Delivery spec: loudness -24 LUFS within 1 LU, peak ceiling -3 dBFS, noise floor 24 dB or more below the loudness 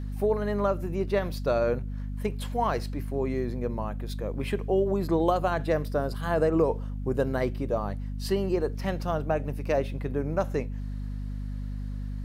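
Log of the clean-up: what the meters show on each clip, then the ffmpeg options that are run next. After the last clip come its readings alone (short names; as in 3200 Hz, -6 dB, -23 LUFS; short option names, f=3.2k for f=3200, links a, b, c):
hum 50 Hz; harmonics up to 250 Hz; hum level -31 dBFS; loudness -29.0 LUFS; peak -11.5 dBFS; loudness target -24.0 LUFS
-> -af "bandreject=f=50:t=h:w=6,bandreject=f=100:t=h:w=6,bandreject=f=150:t=h:w=6,bandreject=f=200:t=h:w=6,bandreject=f=250:t=h:w=6"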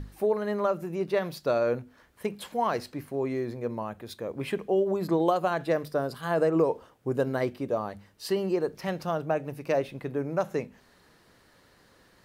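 hum none; loudness -29.5 LUFS; peak -11.5 dBFS; loudness target -24.0 LUFS
-> -af "volume=5.5dB"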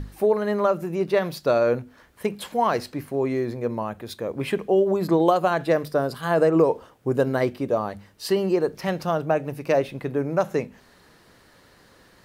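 loudness -24.0 LUFS; peak -6.0 dBFS; noise floor -55 dBFS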